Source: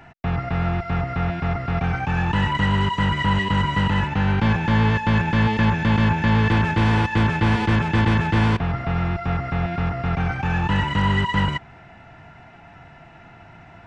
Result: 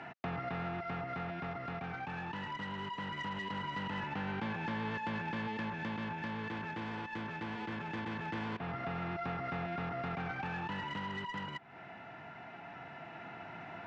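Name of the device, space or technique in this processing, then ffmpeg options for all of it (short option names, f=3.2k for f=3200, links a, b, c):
AM radio: -af "highpass=200,lowpass=4.2k,acompressor=threshold=-36dB:ratio=5,asoftclip=type=tanh:threshold=-30.5dB,tremolo=f=0.21:d=0.34,volume=1dB"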